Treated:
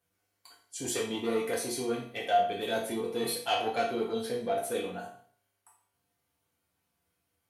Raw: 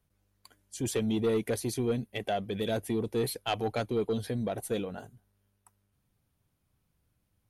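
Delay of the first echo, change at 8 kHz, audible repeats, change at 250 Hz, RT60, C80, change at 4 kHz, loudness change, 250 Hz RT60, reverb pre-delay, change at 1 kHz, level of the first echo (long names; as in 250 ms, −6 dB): no echo audible, +3.0 dB, no echo audible, −4.0 dB, 0.50 s, 9.0 dB, +3.5 dB, +0.5 dB, 0.55 s, 4 ms, +6.5 dB, no echo audible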